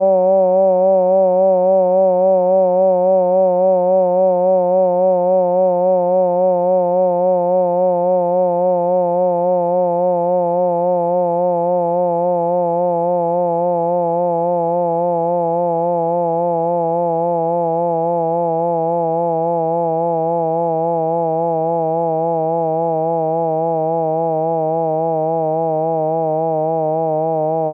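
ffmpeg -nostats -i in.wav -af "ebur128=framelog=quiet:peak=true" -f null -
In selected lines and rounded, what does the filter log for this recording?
Integrated loudness:
  I:         -16.0 LUFS
  Threshold: -26.0 LUFS
Loudness range:
  LRA:         4.2 LU
  Threshold: -36.1 LUFS
  LRA low:   -17.8 LUFS
  LRA high:  -13.6 LUFS
True peak:
  Peak:       -5.4 dBFS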